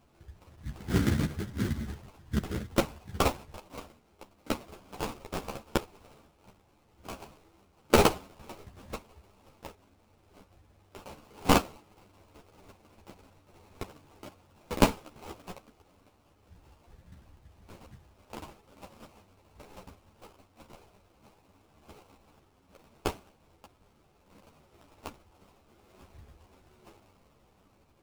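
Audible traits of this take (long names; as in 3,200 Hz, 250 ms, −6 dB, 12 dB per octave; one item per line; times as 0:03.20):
phaser sweep stages 2, 0.94 Hz, lowest notch 570–3,000 Hz
aliases and images of a low sample rate 1,800 Hz, jitter 20%
a shimmering, thickened sound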